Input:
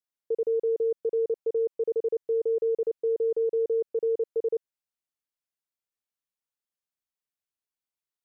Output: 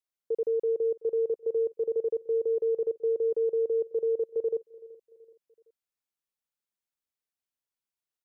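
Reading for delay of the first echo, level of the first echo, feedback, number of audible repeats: 0.379 s, -21.5 dB, 47%, 3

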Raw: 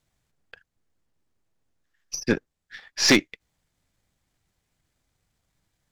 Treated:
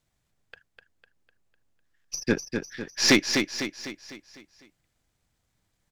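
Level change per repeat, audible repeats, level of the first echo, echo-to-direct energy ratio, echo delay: -6.5 dB, 5, -6.0 dB, -5.0 dB, 0.251 s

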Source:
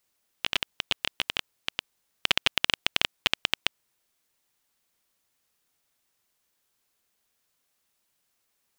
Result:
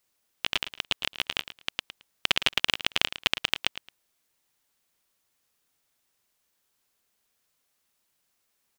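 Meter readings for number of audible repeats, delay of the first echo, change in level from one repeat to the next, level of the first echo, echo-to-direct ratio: 2, 0.11 s, -14.0 dB, -12.5 dB, -12.5 dB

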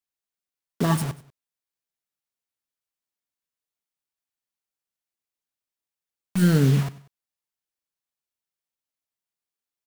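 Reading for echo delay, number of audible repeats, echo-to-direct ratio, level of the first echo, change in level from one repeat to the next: 95 ms, 2, -17.5 dB, -18.5 dB, -7.0 dB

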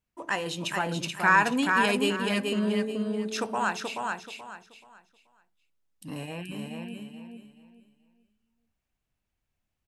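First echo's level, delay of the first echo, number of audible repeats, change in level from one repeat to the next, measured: -4.0 dB, 0.43 s, 3, -11.5 dB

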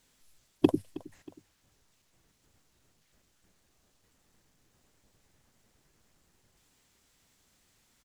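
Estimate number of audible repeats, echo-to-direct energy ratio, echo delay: 2, -18.5 dB, 0.317 s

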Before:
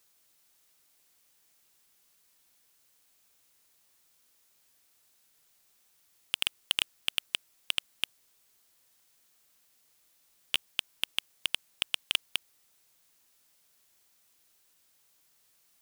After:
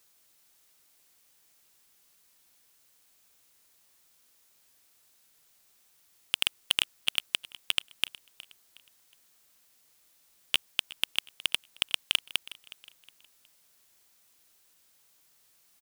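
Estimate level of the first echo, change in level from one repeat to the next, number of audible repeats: -19.0 dB, -8.5 dB, 2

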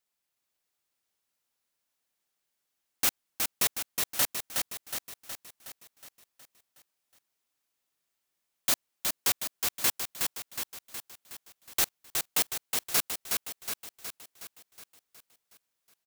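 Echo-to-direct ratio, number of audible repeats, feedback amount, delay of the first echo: -2.5 dB, 7, 56%, 0.367 s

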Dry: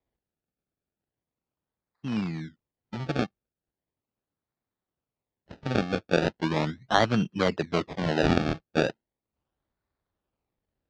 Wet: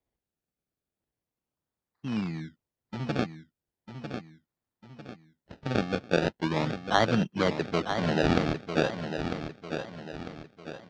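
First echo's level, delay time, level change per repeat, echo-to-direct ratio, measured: -8.0 dB, 0.949 s, -7.5 dB, -7.0 dB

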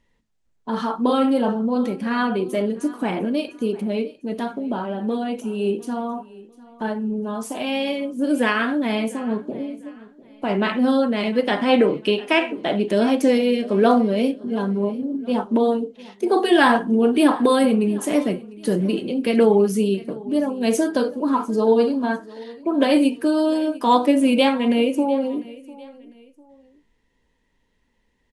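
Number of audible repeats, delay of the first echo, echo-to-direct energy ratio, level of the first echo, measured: 2, 0.7 s, -20.0 dB, -20.5 dB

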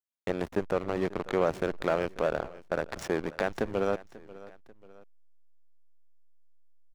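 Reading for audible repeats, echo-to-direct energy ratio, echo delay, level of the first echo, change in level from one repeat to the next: 2, -18.0 dB, 0.54 s, -19.0 dB, -6.5 dB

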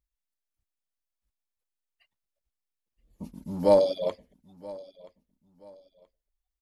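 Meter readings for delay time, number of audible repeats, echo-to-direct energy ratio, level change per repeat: 0.977 s, 2, -20.5 dB, -10.0 dB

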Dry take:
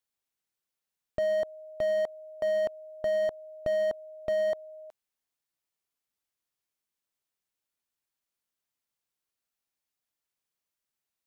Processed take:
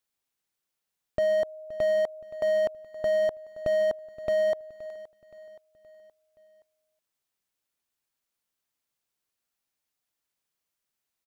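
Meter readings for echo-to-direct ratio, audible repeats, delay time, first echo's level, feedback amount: -17.0 dB, 3, 0.522 s, -18.0 dB, 50%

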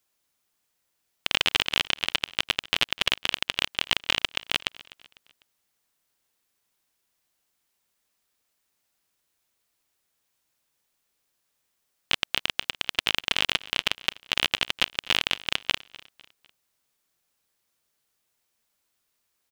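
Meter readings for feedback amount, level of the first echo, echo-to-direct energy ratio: 42%, -20.5 dB, -19.5 dB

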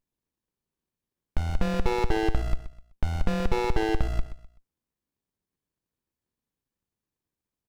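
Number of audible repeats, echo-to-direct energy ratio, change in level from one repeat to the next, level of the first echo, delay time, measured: 3, -12.5 dB, -10.0 dB, -13.0 dB, 0.127 s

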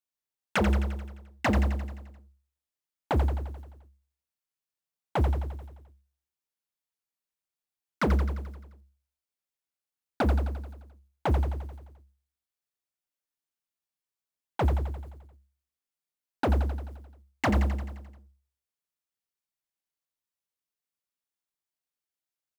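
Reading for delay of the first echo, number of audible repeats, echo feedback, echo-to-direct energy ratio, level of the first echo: 87 ms, 7, 59%, -5.5 dB, -7.5 dB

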